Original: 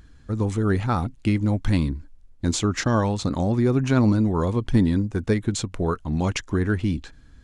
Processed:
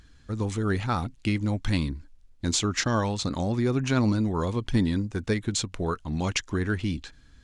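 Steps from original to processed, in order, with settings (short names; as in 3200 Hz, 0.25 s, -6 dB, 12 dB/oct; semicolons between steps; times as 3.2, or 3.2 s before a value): bell 4300 Hz +7.5 dB 2.8 oct; gain -5 dB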